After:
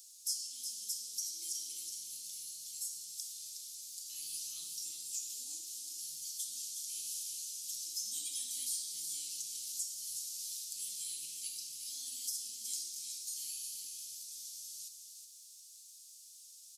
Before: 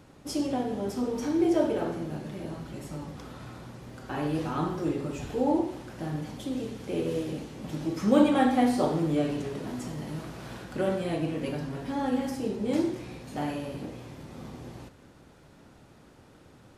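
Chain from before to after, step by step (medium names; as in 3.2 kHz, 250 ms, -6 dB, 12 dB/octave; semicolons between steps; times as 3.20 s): inverse Chebyshev high-pass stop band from 1.7 kHz, stop band 60 dB; compression 2.5:1, threshold -56 dBFS, peak gain reduction 12.5 dB; delay 367 ms -7 dB; trim +17 dB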